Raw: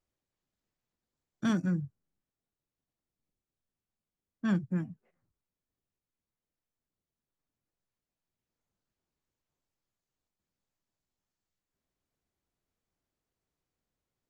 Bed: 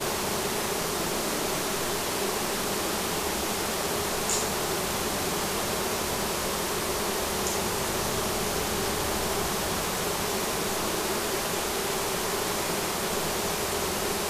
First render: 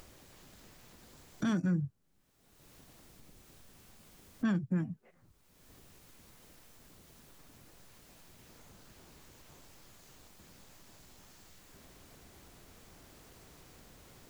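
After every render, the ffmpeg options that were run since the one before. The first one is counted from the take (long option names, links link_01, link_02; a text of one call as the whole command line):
ffmpeg -i in.wav -filter_complex "[0:a]asplit=2[link_01][link_02];[link_02]acompressor=mode=upward:threshold=-31dB:ratio=2.5,volume=-0.5dB[link_03];[link_01][link_03]amix=inputs=2:normalize=0,alimiter=limit=-23.5dB:level=0:latency=1:release=218" out.wav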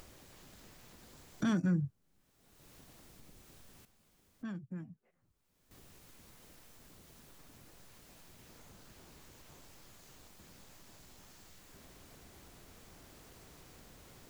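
ffmpeg -i in.wav -filter_complex "[0:a]asplit=3[link_01][link_02][link_03];[link_01]atrim=end=3.852[link_04];[link_02]atrim=start=3.848:end=5.712,asetpts=PTS-STARTPTS,volume=-11.5dB[link_05];[link_03]atrim=start=5.708[link_06];[link_04][link_05]acrossfade=duration=0.004:curve1=hsin:curve2=hsin[link_07];[link_07][link_06]acrossfade=duration=0.004:curve1=hsin:curve2=hsin" out.wav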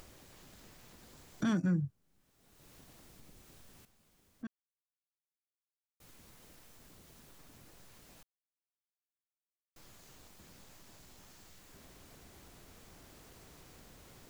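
ffmpeg -i in.wav -filter_complex "[0:a]asplit=5[link_01][link_02][link_03][link_04][link_05];[link_01]atrim=end=4.47,asetpts=PTS-STARTPTS,afade=type=out:start_time=4.466:duration=0.004:curve=hsin[link_06];[link_02]atrim=start=4.47:end=6,asetpts=PTS-STARTPTS,volume=0[link_07];[link_03]atrim=start=6:end=8.23,asetpts=PTS-STARTPTS,afade=type=in:duration=0.004:curve=hsin,afade=type=out:start_time=2.226:duration=0.004:curve=hsin[link_08];[link_04]atrim=start=8.23:end=9.76,asetpts=PTS-STARTPTS,volume=0[link_09];[link_05]atrim=start=9.76,asetpts=PTS-STARTPTS,afade=type=in:duration=0.004:curve=hsin[link_10];[link_06][link_07][link_08][link_09][link_10]concat=n=5:v=0:a=1" out.wav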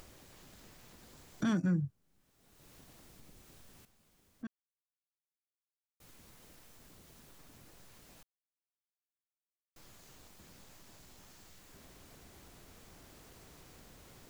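ffmpeg -i in.wav -af anull out.wav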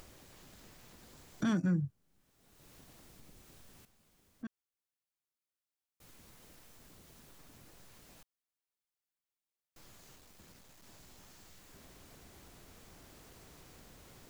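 ffmpeg -i in.wav -filter_complex "[0:a]asettb=1/sr,asplit=3[link_01][link_02][link_03];[link_01]atrim=end=10.164[link_04];[link_02]atrim=start=10.16:end=10.83,asetpts=PTS-STARTPTS,afade=type=in:duration=0.004:curve=qsin,afade=type=out:start_time=0.666:duration=0.004:curve=qsin,aeval=exprs='clip(val(0),-1,0.00126)':channel_layout=same[link_05];[link_03]atrim=start=10.826[link_06];[link_04][link_05]acrossfade=duration=0.004:curve1=hsin:curve2=qsin[link_07];[link_07][link_06]acrossfade=duration=0.004:curve1=qsin:curve2=hsin" out.wav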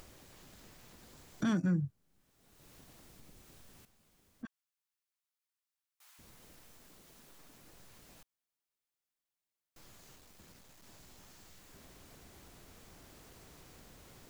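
ffmpeg -i in.wav -filter_complex "[0:a]asettb=1/sr,asplit=3[link_01][link_02][link_03];[link_01]atrim=end=4.454[link_04];[link_02]atrim=start=4.45:end=6.19,asetpts=PTS-STARTPTS,afade=type=in:duration=0.004:curve=qsin,afade=type=out:start_time=1.736:duration=0.004:curve=qsin,highpass=frequency=840:width=0.5412,highpass=frequency=840:width=1.3066[link_05];[link_03]atrim=start=6.186[link_06];[link_04][link_05]acrossfade=duration=0.004:curve1=hsin:curve2=qsin[link_07];[link_07][link_06]acrossfade=duration=0.004:curve1=qsin:curve2=hsin,asettb=1/sr,asplit=3[link_08][link_09][link_10];[link_08]atrim=end=6.774[link_11];[link_09]atrim=start=6.77:end=7.65,asetpts=PTS-STARTPTS,afade=type=in:duration=0.004:curve=qsin,afade=type=out:start_time=0.876:duration=0.004:curve=qsin,equalizer=frequency=76:width=0.83:gain=-10[link_12];[link_10]atrim=start=7.646[link_13];[link_11][link_12]acrossfade=duration=0.004:curve1=hsin:curve2=qsin[link_14];[link_14][link_13]acrossfade=duration=0.004:curve1=qsin:curve2=hsin" out.wav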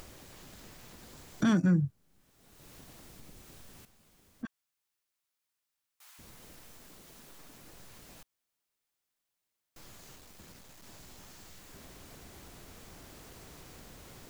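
ffmpeg -i in.wav -af "volume=5.5dB" out.wav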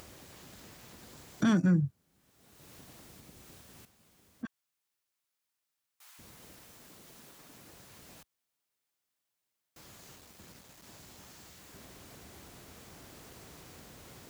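ffmpeg -i in.wav -af "highpass=60" out.wav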